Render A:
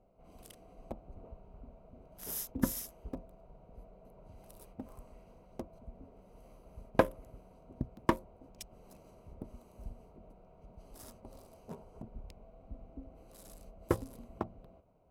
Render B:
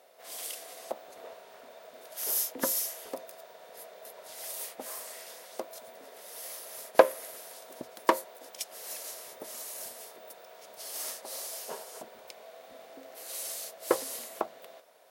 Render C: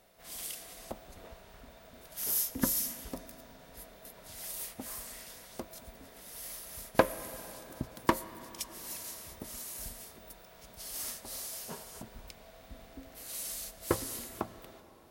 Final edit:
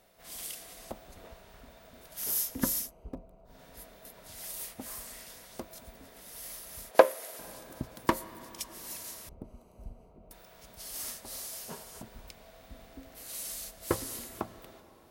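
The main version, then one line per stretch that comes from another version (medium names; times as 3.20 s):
C
2.83–3.52 s: from A, crossfade 0.16 s
6.91–7.39 s: from B
9.29–10.31 s: from A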